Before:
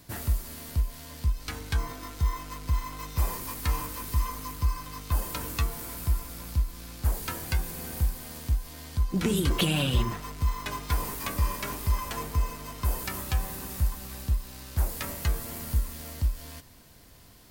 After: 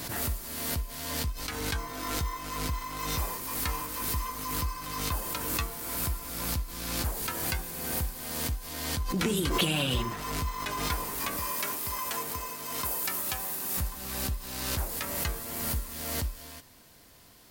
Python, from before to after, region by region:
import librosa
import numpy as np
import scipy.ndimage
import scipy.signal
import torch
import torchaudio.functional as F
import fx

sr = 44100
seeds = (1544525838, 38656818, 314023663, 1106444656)

y = fx.chain(x, sr, fx.highpass(hz=210.0, slope=6),
    fx.high_shelf(hz=6900.0, db=7.0), at=(11.37, 13.77))
y = fx.low_shelf(y, sr, hz=170.0, db=-9.0)
y = fx.pre_swell(y, sr, db_per_s=36.0)